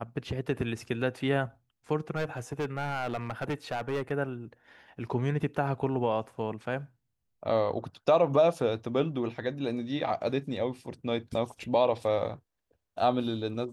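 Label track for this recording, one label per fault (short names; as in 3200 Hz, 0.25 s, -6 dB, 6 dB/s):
2.160000	4.120000	clipped -27 dBFS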